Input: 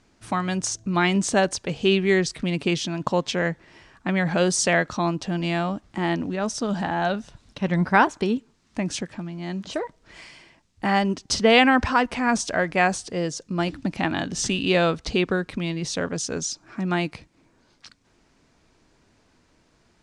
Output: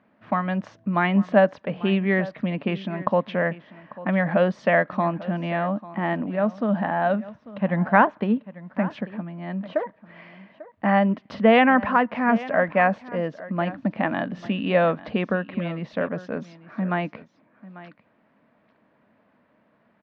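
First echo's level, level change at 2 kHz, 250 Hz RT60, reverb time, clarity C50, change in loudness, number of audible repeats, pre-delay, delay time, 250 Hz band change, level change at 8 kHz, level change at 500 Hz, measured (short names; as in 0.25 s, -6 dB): -17.5 dB, -1.0 dB, none, none, none, 0.0 dB, 1, none, 0.844 s, +1.0 dB, under -30 dB, +1.5 dB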